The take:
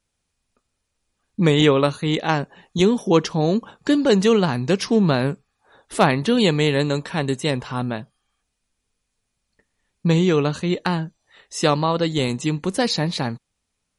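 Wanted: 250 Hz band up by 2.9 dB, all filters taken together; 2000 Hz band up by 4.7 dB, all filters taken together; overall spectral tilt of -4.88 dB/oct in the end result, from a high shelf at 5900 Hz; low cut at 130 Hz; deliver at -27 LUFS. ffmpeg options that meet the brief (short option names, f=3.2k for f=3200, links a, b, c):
-af "highpass=130,equalizer=f=250:t=o:g=4.5,equalizer=f=2k:t=o:g=6.5,highshelf=f=5.9k:g=-6,volume=-8.5dB"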